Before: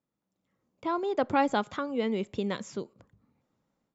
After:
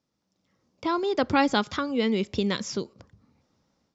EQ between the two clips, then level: peaking EQ 80 Hz +9.5 dB 0.24 oct; dynamic bell 690 Hz, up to -6 dB, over -41 dBFS, Q 1.2; resonant low-pass 5.4 kHz, resonance Q 3.4; +6.0 dB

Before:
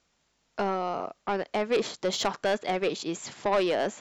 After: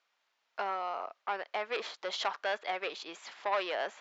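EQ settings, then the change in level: high-pass 870 Hz 12 dB/octave; distance through air 180 m; 0.0 dB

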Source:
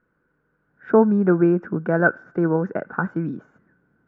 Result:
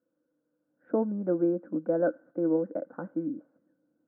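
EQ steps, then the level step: two resonant band-passes 400 Hz, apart 0.77 oct; 0.0 dB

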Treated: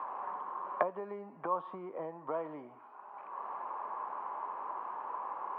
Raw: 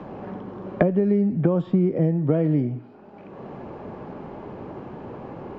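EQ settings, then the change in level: dynamic bell 1.7 kHz, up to -6 dB, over -44 dBFS, Q 1.1; ladder band-pass 1.1 kHz, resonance 75%; distance through air 120 m; +10.0 dB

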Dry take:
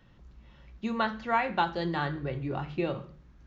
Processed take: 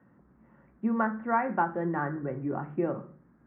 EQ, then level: high-pass 160 Hz 12 dB/octave; steep low-pass 1.8 kHz 36 dB/octave; peaking EQ 240 Hz +6 dB 0.81 oct; 0.0 dB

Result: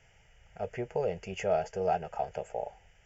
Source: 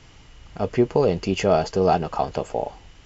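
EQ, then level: bass shelf 190 Hz -7 dB; static phaser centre 1.1 kHz, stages 6; -7.5 dB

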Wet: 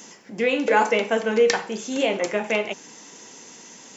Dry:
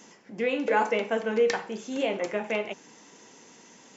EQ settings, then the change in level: treble shelf 4.3 kHz +8.5 dB; +5.0 dB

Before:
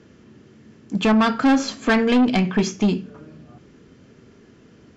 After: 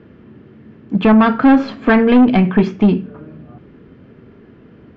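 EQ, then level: distance through air 440 m; +7.5 dB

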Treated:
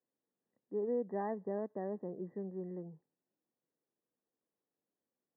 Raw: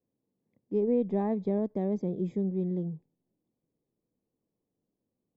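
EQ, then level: high-pass 1.3 kHz 6 dB/octave; brick-wall FIR low-pass 2 kHz; +2.5 dB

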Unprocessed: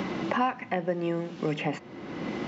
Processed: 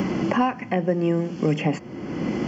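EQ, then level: Butterworth band-stop 3.8 kHz, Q 4.2; bass shelf 480 Hz +11 dB; treble shelf 4.1 kHz +10 dB; 0.0 dB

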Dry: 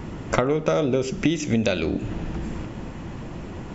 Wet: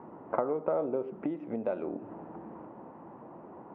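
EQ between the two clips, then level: high-pass 290 Hz 12 dB/octave; resonant low-pass 940 Hz, resonance Q 2; distance through air 310 m; -9.0 dB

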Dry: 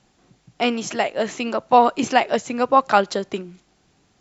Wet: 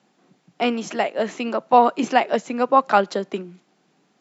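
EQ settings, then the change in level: steep high-pass 160 Hz 36 dB/octave; treble shelf 3.8 kHz -8 dB; 0.0 dB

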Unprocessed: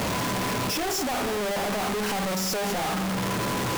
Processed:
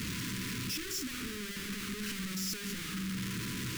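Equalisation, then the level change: Butterworth band-stop 700 Hz, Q 0.53; -7.5 dB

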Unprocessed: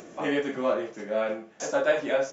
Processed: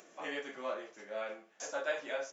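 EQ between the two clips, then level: high-pass 970 Hz 6 dB/octave; -7.0 dB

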